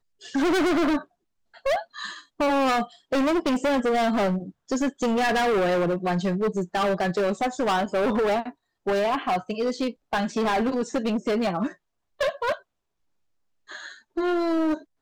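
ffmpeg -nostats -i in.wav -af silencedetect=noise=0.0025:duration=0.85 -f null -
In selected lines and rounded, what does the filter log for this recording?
silence_start: 12.62
silence_end: 13.68 | silence_duration: 1.06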